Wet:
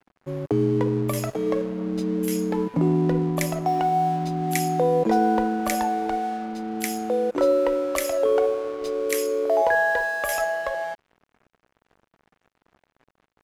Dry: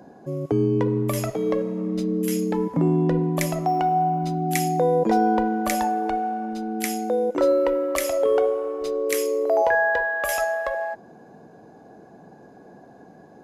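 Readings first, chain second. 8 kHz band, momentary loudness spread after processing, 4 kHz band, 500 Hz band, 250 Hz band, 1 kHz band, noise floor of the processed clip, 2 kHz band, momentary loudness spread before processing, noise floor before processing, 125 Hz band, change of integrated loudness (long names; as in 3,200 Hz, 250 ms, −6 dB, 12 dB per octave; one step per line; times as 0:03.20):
−0.5 dB, 8 LU, 0.0 dB, −0.5 dB, −1.0 dB, −1.0 dB, −77 dBFS, −0.5 dB, 7 LU, −48 dBFS, −1.0 dB, −0.5 dB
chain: dead-zone distortion −41.5 dBFS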